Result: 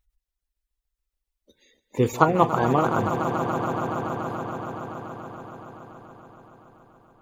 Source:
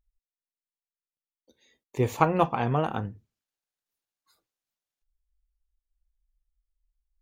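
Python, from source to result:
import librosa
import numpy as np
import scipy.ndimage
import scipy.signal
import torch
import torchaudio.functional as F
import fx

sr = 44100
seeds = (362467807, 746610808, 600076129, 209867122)

p1 = fx.spec_quant(x, sr, step_db=30)
p2 = p1 + fx.echo_swell(p1, sr, ms=142, loudest=5, wet_db=-12.0, dry=0)
y = p2 * 10.0 ** (4.5 / 20.0)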